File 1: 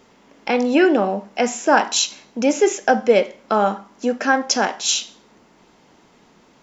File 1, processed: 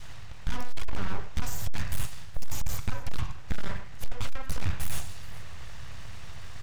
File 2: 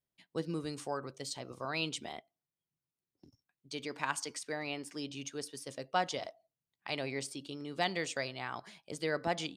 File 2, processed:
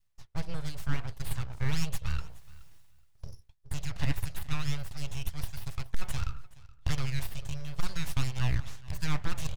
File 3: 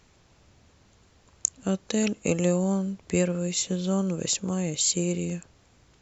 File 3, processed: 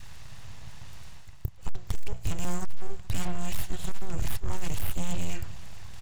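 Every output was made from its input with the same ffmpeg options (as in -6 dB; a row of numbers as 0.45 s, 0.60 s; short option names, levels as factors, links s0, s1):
-filter_complex "[0:a]bandreject=f=60:t=h:w=6,bandreject=f=120:t=h:w=6,bandreject=f=180:t=h:w=6,bandreject=f=240:t=h:w=6,bandreject=f=300:t=h:w=6,bandreject=f=360:t=h:w=6,bandreject=f=420:t=h:w=6,bandreject=f=480:t=h:w=6,bandreject=f=540:t=h:w=6,aecho=1:1:1.1:0.49,acrossover=split=1500|4200[s0][s1][s2];[s0]acompressor=threshold=0.0708:ratio=4[s3];[s1]acompressor=threshold=0.00891:ratio=4[s4];[s2]acompressor=threshold=0.0251:ratio=4[s5];[s3][s4][s5]amix=inputs=3:normalize=0,adynamicequalizer=threshold=0.00794:dfrequency=860:dqfactor=2.3:tfrequency=860:tqfactor=2.3:attack=5:release=100:ratio=0.375:range=3:mode=cutabove:tftype=bell,asplit=2[s6][s7];[s7]highpass=f=720:p=1,volume=2.51,asoftclip=type=tanh:threshold=0.422[s8];[s6][s8]amix=inputs=2:normalize=0,lowpass=f=4600:p=1,volume=0.501,alimiter=limit=0.1:level=0:latency=1:release=364,areverse,acompressor=mode=upward:threshold=0.0112:ratio=2.5,areverse,aeval=exprs='abs(val(0))':c=same,lowshelf=f=170:t=q:w=1.5:g=14,aeval=exprs='clip(val(0),-1,0.119)':c=same,asplit=2[s9][s10];[s10]aecho=0:1:423|846:0.0891|0.0143[s11];[s9][s11]amix=inputs=2:normalize=0,volume=1.12"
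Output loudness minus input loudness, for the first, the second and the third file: -19.0 LU, +1.5 LU, -10.0 LU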